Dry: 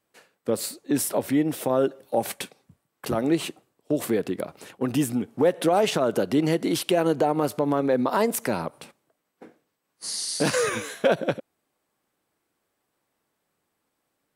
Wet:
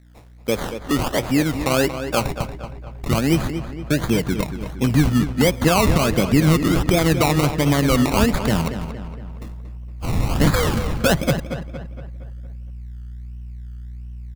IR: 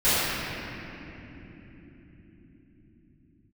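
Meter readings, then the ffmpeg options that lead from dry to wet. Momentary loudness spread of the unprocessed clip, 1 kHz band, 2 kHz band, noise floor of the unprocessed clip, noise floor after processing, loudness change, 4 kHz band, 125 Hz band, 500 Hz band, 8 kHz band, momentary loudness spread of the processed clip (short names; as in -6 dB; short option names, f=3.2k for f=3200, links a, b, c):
11 LU, +4.0 dB, +8.0 dB, -78 dBFS, -35 dBFS, +5.0 dB, +6.5 dB, +14.5 dB, +1.5 dB, +3.0 dB, 20 LU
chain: -filter_complex "[0:a]aeval=exprs='val(0)+0.00251*(sin(2*PI*60*n/s)+sin(2*PI*2*60*n/s)/2+sin(2*PI*3*60*n/s)/3+sin(2*PI*4*60*n/s)/4+sin(2*PI*5*60*n/s)/5)':c=same,acrusher=samples=22:mix=1:aa=0.000001:lfo=1:lforange=13.2:lforate=1.4,asubboost=boost=5.5:cutoff=170,asplit=2[a][b];[b]adelay=232,lowpass=f=3.4k:p=1,volume=-9.5dB,asplit=2[c][d];[d]adelay=232,lowpass=f=3.4k:p=1,volume=0.51,asplit=2[e][f];[f]adelay=232,lowpass=f=3.4k:p=1,volume=0.51,asplit=2[g][h];[h]adelay=232,lowpass=f=3.4k:p=1,volume=0.51,asplit=2[i][j];[j]adelay=232,lowpass=f=3.4k:p=1,volume=0.51,asplit=2[k][l];[l]adelay=232,lowpass=f=3.4k:p=1,volume=0.51[m];[c][e][g][i][k][m]amix=inputs=6:normalize=0[n];[a][n]amix=inputs=2:normalize=0,volume=4dB"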